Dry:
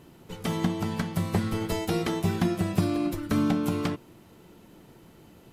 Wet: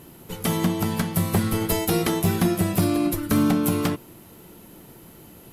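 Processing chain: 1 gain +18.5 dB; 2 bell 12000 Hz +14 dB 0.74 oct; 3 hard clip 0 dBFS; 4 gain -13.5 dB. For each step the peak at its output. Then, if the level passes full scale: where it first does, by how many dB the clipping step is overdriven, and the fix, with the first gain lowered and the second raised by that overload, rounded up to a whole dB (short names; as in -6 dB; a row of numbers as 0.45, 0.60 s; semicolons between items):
+7.5, +8.0, 0.0, -13.5 dBFS; step 1, 8.0 dB; step 1 +10.5 dB, step 4 -5.5 dB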